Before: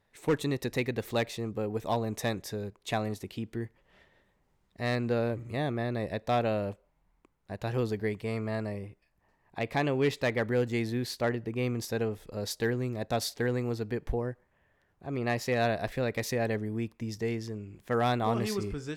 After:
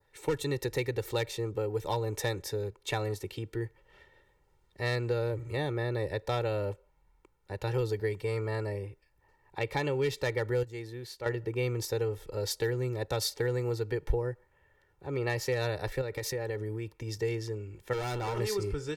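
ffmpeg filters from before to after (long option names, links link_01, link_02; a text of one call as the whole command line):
ffmpeg -i in.wav -filter_complex "[0:a]asettb=1/sr,asplit=3[link_01][link_02][link_03];[link_01]atrim=end=16.014[link_04];[link_02]atrim=start=16.01:end=17.12,asetpts=PTS-STARTPTS,afade=type=in:duration=0.004:curve=qsin,afade=type=out:start_time=1.106:duration=0.004:curve=qsin,acompressor=threshold=-32dB:ratio=6:attack=3.2:release=140:knee=1:detection=peak[link_05];[link_03]atrim=start=17.116[link_06];[link_04][link_05]acrossfade=duration=0.004:curve1=hsin:curve2=qsin[link_07];[link_07][link_06]acrossfade=duration=0.004:curve1=qsin:curve2=hsin,asettb=1/sr,asplit=3[link_08][link_09][link_10];[link_08]atrim=end=17.934[link_11];[link_09]atrim=start=17.93:end=18.39,asetpts=PTS-STARTPTS,afade=type=in:duration=0.004:curve=qsin,afade=type=out:start_time=0.456:duration=0.004:curve=qsin,asoftclip=type=hard:threshold=-31dB[link_12];[link_10]atrim=start=18.386[link_13];[link_11][link_12]acrossfade=duration=0.004:curve1=hsin:curve2=qsin[link_14];[link_14][link_13]acrossfade=duration=0.004:curve1=qsin:curve2=hsin,asplit=3[link_15][link_16][link_17];[link_15]atrim=end=10.632[link_18];[link_16]atrim=start=10.628:end=11.262,asetpts=PTS-STARTPTS,volume=-10dB[link_19];[link_17]atrim=start=11.258[link_20];[link_18][link_19]acrossfade=duration=0.004:curve1=hsin:curve2=hsin[link_21];[link_21][link_20]acrossfade=duration=0.004:curve1=hsin:curve2=hsin,adynamicequalizer=threshold=0.00316:dfrequency=2900:dqfactor=1.5:tfrequency=2900:tqfactor=1.5:attack=5:release=100:ratio=0.375:range=2:mode=cutabove:tftype=bell,aecho=1:1:2.2:0.8,acrossover=split=140|3000[link_22][link_23][link_24];[link_23]acompressor=threshold=-29dB:ratio=3[link_25];[link_22][link_25][link_24]amix=inputs=3:normalize=0" out.wav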